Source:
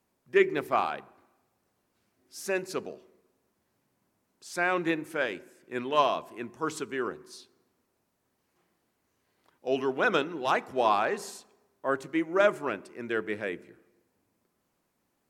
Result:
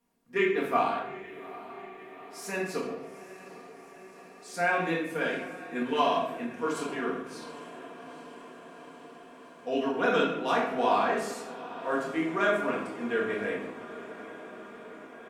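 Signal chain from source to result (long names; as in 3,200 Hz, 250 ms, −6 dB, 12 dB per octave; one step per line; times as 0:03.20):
comb filter 4.3 ms, depth 45%
feedback delay with all-pass diffusion 826 ms, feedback 71%, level −15.5 dB
rectangular room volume 250 cubic metres, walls mixed, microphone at 1.8 metres
every ending faded ahead of time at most 190 dB per second
level −6 dB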